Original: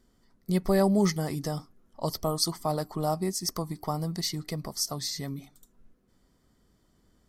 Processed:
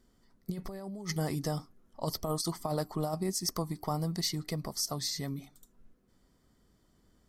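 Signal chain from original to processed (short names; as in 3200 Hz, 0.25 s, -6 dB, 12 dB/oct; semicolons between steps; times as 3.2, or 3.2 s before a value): negative-ratio compressor -28 dBFS, ratio -0.5; gain -3.5 dB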